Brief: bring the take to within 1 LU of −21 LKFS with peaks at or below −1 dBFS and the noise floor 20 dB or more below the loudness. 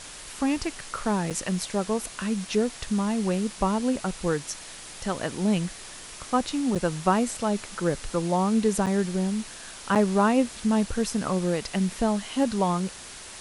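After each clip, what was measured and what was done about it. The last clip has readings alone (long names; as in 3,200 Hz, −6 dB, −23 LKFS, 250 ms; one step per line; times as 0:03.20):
number of dropouts 4; longest dropout 7.1 ms; background noise floor −42 dBFS; target noise floor −47 dBFS; integrated loudness −26.5 LKFS; sample peak −9.0 dBFS; target loudness −21.0 LKFS
→ repair the gap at 0:01.30/0:06.75/0:08.86/0:09.95, 7.1 ms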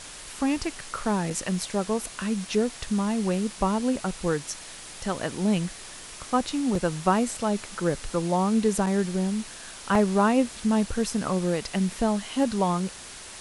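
number of dropouts 0; background noise floor −42 dBFS; target noise floor −47 dBFS
→ noise reduction from a noise print 6 dB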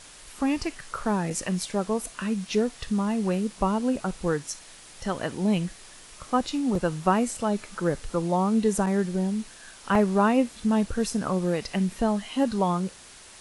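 background noise floor −48 dBFS; integrated loudness −26.5 LKFS; sample peak −9.0 dBFS; target loudness −21.0 LKFS
→ level +5.5 dB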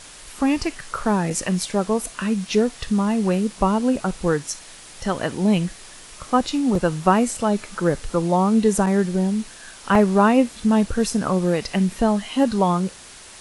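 integrated loudness −21.0 LKFS; sample peak −3.5 dBFS; background noise floor −43 dBFS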